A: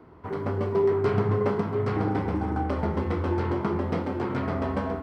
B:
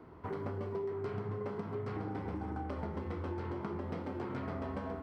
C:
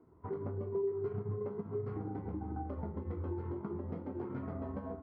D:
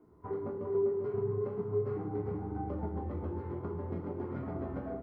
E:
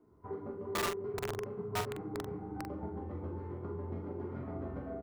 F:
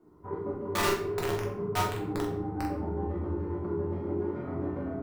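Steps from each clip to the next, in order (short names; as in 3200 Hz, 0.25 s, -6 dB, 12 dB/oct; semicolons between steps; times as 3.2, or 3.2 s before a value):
compressor 6:1, threshold -33 dBFS, peak gain reduction 13.5 dB; gain -3 dB
transient shaper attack 0 dB, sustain -6 dB; spectral expander 1.5:1; gain -1.5 dB
echo 0.395 s -6 dB; on a send at -2 dB: reverb, pre-delay 3 ms
wrapped overs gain 25 dB; doubler 44 ms -6.5 dB; gain -4 dB
shoebox room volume 100 m³, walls mixed, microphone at 1 m; gain +2.5 dB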